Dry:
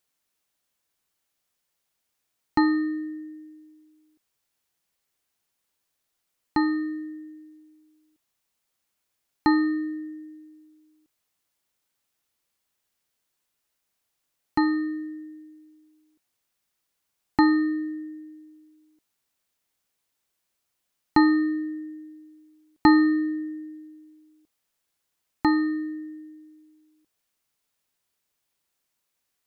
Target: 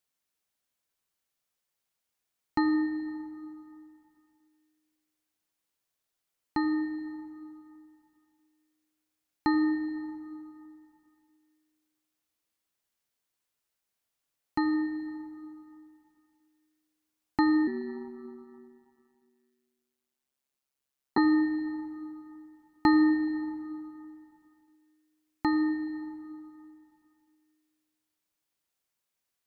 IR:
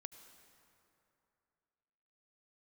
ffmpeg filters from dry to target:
-filter_complex "[1:a]atrim=start_sample=2205[a];[0:a][a]afir=irnorm=-1:irlink=0,asettb=1/sr,asplit=3[b][c][d];[b]atrim=end=17.674[e];[c]atrim=start=17.67:end=21.18,asetpts=PTS-STARTPTS,afade=t=in:d=0.004:c=qsin,afade=t=out:st=3.506:d=0.004:c=qsin,aeval=exprs='val(0)*sin(2*PI*68*n/s)':c=same[f];[d]atrim=start=21.176[g];[e][f]acrossfade=d=0.004:c1=hsin:c2=qsin[h];[h][g]acrossfade=d=0.004:c1=qsin:c2=hsin"

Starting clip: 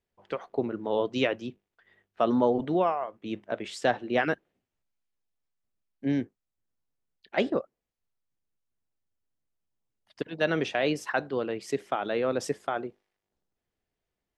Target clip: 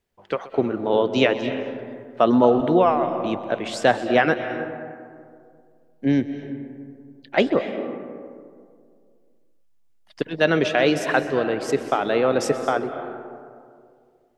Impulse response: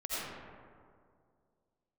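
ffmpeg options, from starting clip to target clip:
-filter_complex "[0:a]asplit=2[a][b];[1:a]atrim=start_sample=2205,adelay=128[c];[b][c]afir=irnorm=-1:irlink=0,volume=-13.5dB[d];[a][d]amix=inputs=2:normalize=0,volume=7.5dB"

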